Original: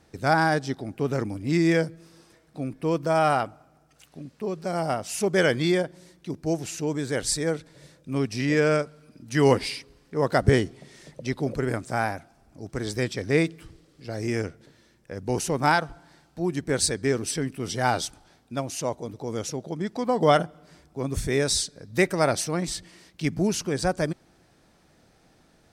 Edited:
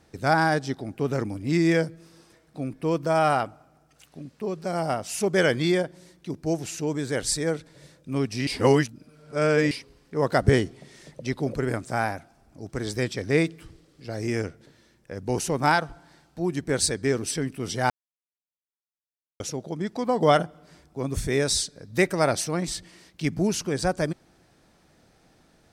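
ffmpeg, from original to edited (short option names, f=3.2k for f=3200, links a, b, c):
-filter_complex "[0:a]asplit=5[a][b][c][d][e];[a]atrim=end=8.472[f];[b]atrim=start=8.468:end=9.712,asetpts=PTS-STARTPTS,areverse[g];[c]atrim=start=9.708:end=17.9,asetpts=PTS-STARTPTS,afade=t=out:st=8.188:d=0.004:c=hsin[h];[d]atrim=start=17.9:end=19.4,asetpts=PTS-STARTPTS,volume=0[i];[e]atrim=start=19.4,asetpts=PTS-STARTPTS,afade=t=in:d=0.004:c=hsin[j];[f][g]acrossfade=d=0.004:c1=hsin:c2=hsin[k];[h][i][j]concat=n=3:v=0:a=1[l];[k][l]acrossfade=d=0.004:c1=hsin:c2=hsin"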